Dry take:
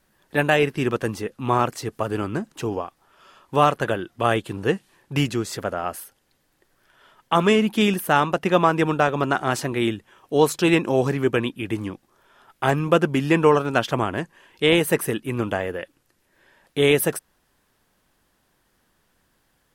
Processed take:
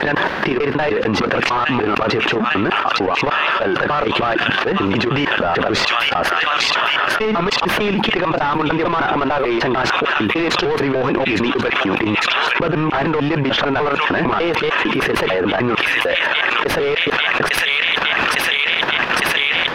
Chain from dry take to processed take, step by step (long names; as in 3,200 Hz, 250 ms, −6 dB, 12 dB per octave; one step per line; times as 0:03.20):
slices reordered back to front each 150 ms, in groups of 3
on a send: delay with a high-pass on its return 856 ms, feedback 59%, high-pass 2,800 Hz, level −12 dB
on the sum: mid-hump overdrive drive 32 dB, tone 3,600 Hz, clips at −3 dBFS
output level in coarse steps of 11 dB
high-frequency loss of the air 290 metres
envelope flattener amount 100%
level −5.5 dB